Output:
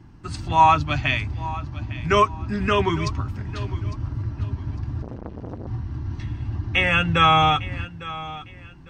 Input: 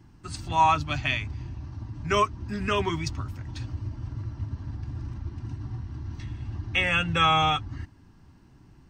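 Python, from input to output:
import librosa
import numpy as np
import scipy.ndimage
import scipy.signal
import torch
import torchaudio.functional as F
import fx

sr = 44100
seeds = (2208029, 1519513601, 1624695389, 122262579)

p1 = fx.lowpass(x, sr, hz=3400.0, slope=6)
p2 = p1 + fx.echo_feedback(p1, sr, ms=854, feedback_pct=28, wet_db=-16.5, dry=0)
p3 = fx.transformer_sat(p2, sr, knee_hz=610.0, at=(5.02, 5.67))
y = p3 * librosa.db_to_amplitude(6.0)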